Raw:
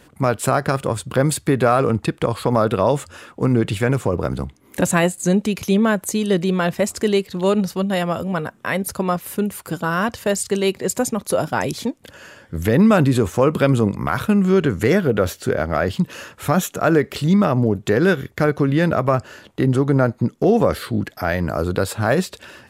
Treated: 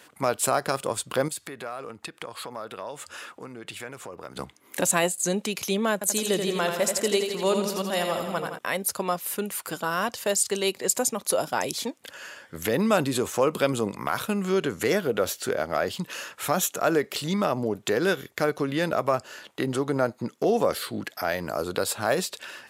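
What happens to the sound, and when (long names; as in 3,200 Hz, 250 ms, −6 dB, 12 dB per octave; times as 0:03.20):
0:01.28–0:04.36: downward compressor 2.5 to 1, threshold −35 dBFS
0:05.93–0:08.59: repeating echo 83 ms, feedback 59%, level −6 dB
whole clip: high-pass filter 1,000 Hz 6 dB per octave; dynamic equaliser 1,700 Hz, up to −7 dB, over −38 dBFS, Q 0.83; level +2 dB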